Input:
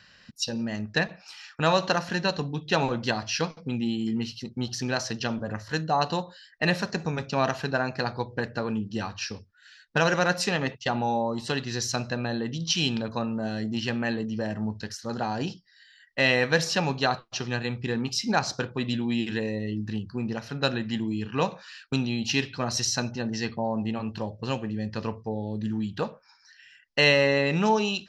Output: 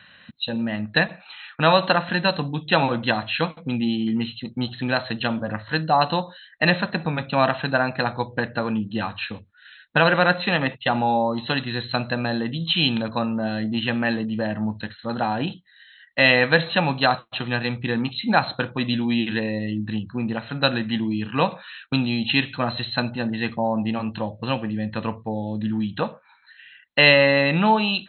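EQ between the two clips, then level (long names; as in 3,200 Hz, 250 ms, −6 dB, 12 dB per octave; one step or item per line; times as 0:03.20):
high-pass filter 130 Hz 6 dB per octave
linear-phase brick-wall low-pass 4,200 Hz
parametric band 410 Hz −12 dB 0.22 octaves
+6.5 dB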